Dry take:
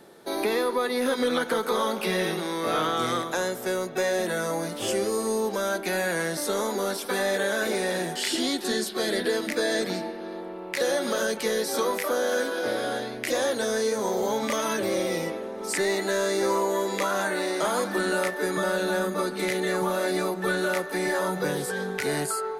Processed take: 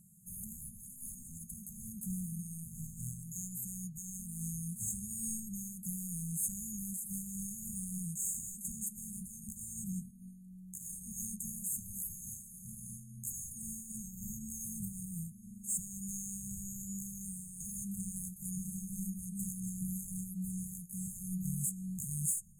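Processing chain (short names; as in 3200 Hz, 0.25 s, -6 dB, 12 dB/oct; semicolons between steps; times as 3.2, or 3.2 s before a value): soft clip -26 dBFS, distortion -11 dB; brick-wall FIR band-stop 210–6400 Hz; noise-modulated level, depth 60%; gain +4 dB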